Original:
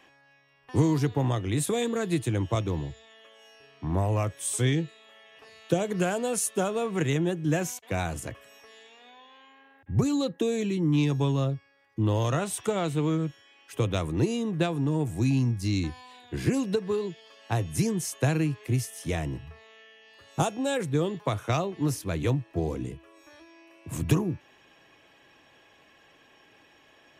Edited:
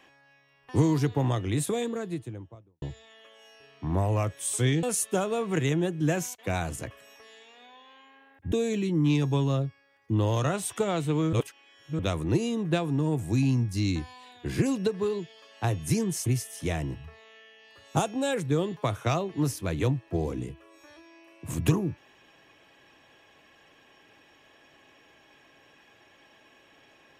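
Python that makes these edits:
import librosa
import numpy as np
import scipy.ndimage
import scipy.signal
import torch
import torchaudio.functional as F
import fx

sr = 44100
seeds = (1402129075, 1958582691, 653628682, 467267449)

y = fx.studio_fade_out(x, sr, start_s=1.4, length_s=1.42)
y = fx.edit(y, sr, fx.cut(start_s=4.83, length_s=1.44),
    fx.cut(start_s=9.96, length_s=0.44),
    fx.reverse_span(start_s=13.21, length_s=0.66),
    fx.cut(start_s=18.14, length_s=0.55), tone=tone)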